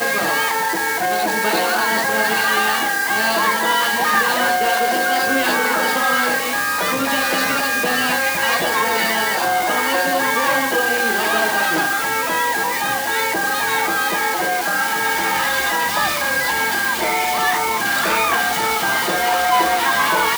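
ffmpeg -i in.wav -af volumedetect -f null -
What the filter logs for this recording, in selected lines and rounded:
mean_volume: -18.3 dB
max_volume: -4.2 dB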